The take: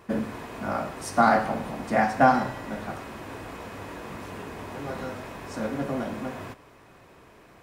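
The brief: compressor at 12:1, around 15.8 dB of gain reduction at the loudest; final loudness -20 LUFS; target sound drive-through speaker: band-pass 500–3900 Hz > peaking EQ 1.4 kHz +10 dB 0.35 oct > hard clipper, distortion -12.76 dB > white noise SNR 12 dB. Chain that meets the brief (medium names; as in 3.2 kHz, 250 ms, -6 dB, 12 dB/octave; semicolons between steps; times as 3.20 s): compression 12:1, threshold -29 dBFS; band-pass 500–3900 Hz; peaking EQ 1.4 kHz +10 dB 0.35 oct; hard clipper -29 dBFS; white noise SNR 12 dB; trim +17 dB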